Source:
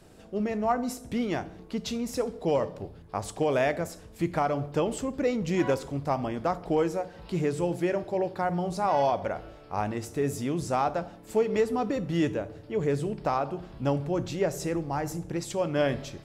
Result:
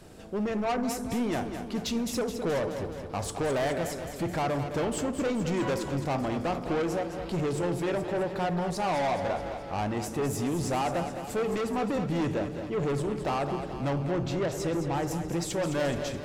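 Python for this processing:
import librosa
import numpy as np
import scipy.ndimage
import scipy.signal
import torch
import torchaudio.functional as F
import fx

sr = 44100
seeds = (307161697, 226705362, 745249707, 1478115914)

y = fx.high_shelf(x, sr, hz=5600.0, db=-8.5, at=(13.95, 15.11))
y = 10.0 ** (-29.5 / 20.0) * np.tanh(y / 10.0 ** (-29.5 / 20.0))
y = fx.echo_feedback(y, sr, ms=213, feedback_pct=60, wet_db=-9.0)
y = y * 10.0 ** (4.0 / 20.0)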